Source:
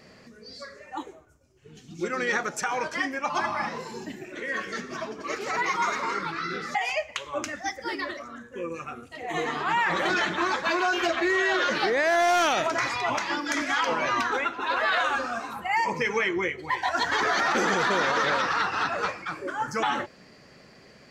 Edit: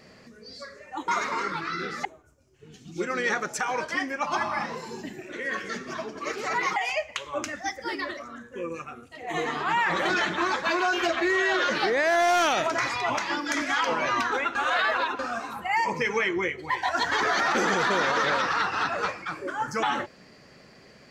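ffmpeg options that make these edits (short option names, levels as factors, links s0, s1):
-filter_complex "[0:a]asplit=8[s0][s1][s2][s3][s4][s5][s6][s7];[s0]atrim=end=1.082[s8];[s1]atrim=start=5.788:end=6.762[s9];[s2]atrim=start=1.078:end=5.792[s10];[s3]atrim=start=6.758:end=8.822[s11];[s4]atrim=start=8.818:end=9.272,asetpts=PTS-STARTPTS,volume=0.708[s12];[s5]atrim=start=9.268:end=14.552[s13];[s6]atrim=start=14.548:end=15.192,asetpts=PTS-STARTPTS,areverse[s14];[s7]atrim=start=15.188[s15];[s8][s9]acrossfade=d=0.004:c1=hsin:c2=hsin[s16];[s16][s10]acrossfade=d=0.004:c1=hsin:c2=hsin[s17];[s17][s11]acrossfade=d=0.004:c1=hsin:c2=hsin[s18];[s18][s12]acrossfade=d=0.004:c1=hsin:c2=hsin[s19];[s19][s13]acrossfade=d=0.004:c1=hsin:c2=hsin[s20];[s20][s14]acrossfade=d=0.004:c1=hsin:c2=hsin[s21];[s21][s15]acrossfade=d=0.004:c1=hsin:c2=hsin"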